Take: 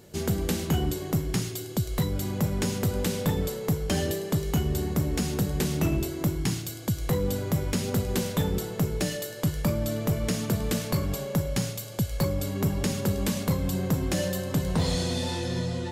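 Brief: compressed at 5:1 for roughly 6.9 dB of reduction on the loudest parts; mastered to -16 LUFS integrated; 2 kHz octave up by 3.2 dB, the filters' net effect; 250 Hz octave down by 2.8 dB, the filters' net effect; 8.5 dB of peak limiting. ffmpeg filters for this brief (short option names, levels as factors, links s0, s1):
-af "equalizer=f=250:t=o:g=-4.5,equalizer=f=2000:t=o:g=4,acompressor=threshold=0.0316:ratio=5,volume=10,alimiter=limit=0.473:level=0:latency=1"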